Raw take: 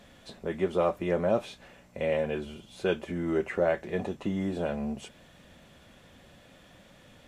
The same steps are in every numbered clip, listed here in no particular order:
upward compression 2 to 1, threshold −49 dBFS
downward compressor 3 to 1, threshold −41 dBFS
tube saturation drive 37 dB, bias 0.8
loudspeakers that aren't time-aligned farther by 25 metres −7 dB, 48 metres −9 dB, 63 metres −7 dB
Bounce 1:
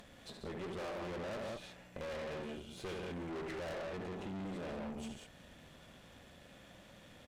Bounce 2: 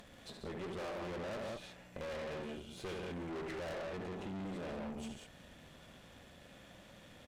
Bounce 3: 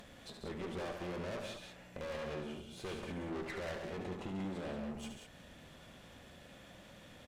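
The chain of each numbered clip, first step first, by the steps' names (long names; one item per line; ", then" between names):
loudspeakers that aren't time-aligned, then upward compression, then tube saturation, then downward compressor
upward compression, then loudspeakers that aren't time-aligned, then tube saturation, then downward compressor
tube saturation, then downward compressor, then loudspeakers that aren't time-aligned, then upward compression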